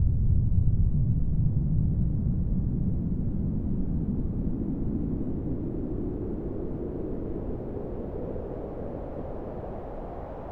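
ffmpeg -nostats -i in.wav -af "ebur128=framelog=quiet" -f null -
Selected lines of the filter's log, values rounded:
Integrated loudness:
  I:         -30.4 LUFS
  Threshold: -40.4 LUFS
Loudness range:
  LRA:         8.0 LU
  Threshold: -51.0 LUFS
  LRA low:   -35.5 LUFS
  LRA high:  -27.6 LUFS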